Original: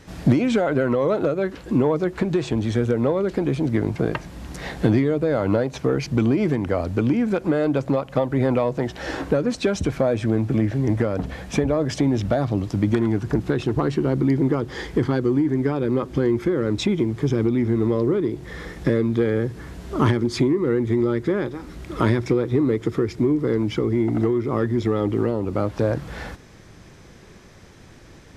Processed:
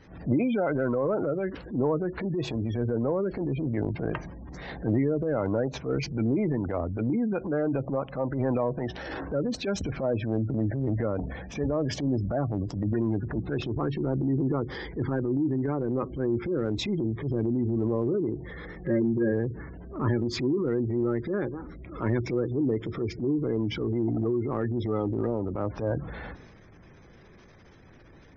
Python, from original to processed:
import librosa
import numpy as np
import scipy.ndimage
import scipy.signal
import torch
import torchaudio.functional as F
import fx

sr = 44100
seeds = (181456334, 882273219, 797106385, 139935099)

y = scipy.signal.sosfilt(scipy.signal.butter(2, 6500.0, 'lowpass', fs=sr, output='sos'), x)
y = fx.spec_gate(y, sr, threshold_db=-25, keep='strong')
y = fx.comb(y, sr, ms=5.5, depth=0.91, at=(18.77, 19.31), fade=0.02)
y = fx.transient(y, sr, attack_db=-10, sustain_db=4)
y = y * librosa.db_to_amplitude(-5.5)